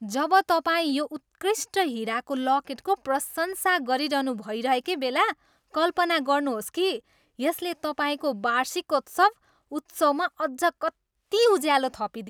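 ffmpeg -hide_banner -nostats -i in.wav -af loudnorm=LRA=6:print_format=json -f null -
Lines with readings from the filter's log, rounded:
"input_i" : "-25.4",
"input_tp" : "-6.9",
"input_lra" : "1.3",
"input_thresh" : "-35.7",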